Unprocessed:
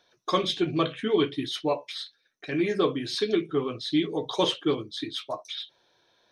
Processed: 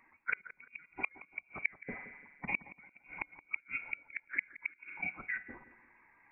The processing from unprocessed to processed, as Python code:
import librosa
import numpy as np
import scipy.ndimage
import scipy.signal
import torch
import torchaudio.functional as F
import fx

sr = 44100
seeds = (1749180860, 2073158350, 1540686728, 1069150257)

y = fx.spec_quant(x, sr, step_db=15)
y = fx.level_steps(y, sr, step_db=14)
y = fx.rev_spring(y, sr, rt60_s=1.6, pass_ms=(41,), chirp_ms=40, drr_db=17.0)
y = fx.gate_flip(y, sr, shuts_db=-26.0, range_db=-36)
y = fx.freq_invert(y, sr, carrier_hz=2600)
y = fx.echo_bbd(y, sr, ms=171, stages=2048, feedback_pct=31, wet_db=-14)
y = F.gain(torch.from_numpy(y), 6.5).numpy()